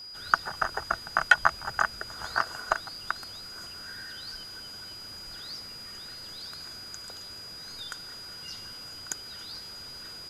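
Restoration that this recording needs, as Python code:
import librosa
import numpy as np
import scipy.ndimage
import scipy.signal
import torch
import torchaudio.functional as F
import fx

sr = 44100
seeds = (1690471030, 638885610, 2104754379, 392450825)

y = fx.fix_declick_ar(x, sr, threshold=6.5)
y = fx.notch(y, sr, hz=4900.0, q=30.0)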